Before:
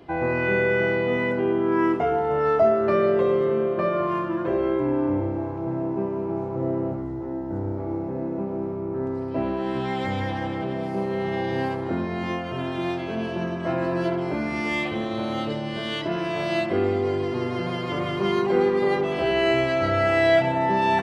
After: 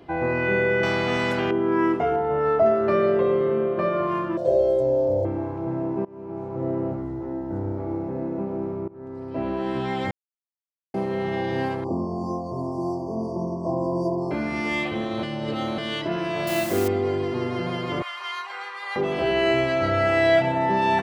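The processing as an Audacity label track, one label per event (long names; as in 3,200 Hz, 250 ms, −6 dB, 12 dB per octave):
0.830000	1.510000	every bin compressed towards the loudest bin 2 to 1
2.160000	2.660000	high-shelf EQ 3,800 Hz −10.5 dB
3.170000	3.770000	Bessel low-pass filter 4,100 Hz
4.370000	5.250000	drawn EQ curve 120 Hz 0 dB, 320 Hz −11 dB, 570 Hz +14 dB, 1,100 Hz −17 dB, 2,400 Hz −17 dB, 4,300 Hz +8 dB, 8,100 Hz +14 dB
6.050000	6.950000	fade in equal-power, from −23.5 dB
8.880000	9.570000	fade in, from −21.5 dB
10.110000	10.940000	silence
11.840000	14.310000	linear-phase brick-wall band-stop 1,200–4,400 Hz
15.230000	15.780000	reverse
16.470000	16.880000	bit-depth reduction 6 bits, dither triangular
18.020000	18.960000	high-pass filter 1,000 Hz 24 dB per octave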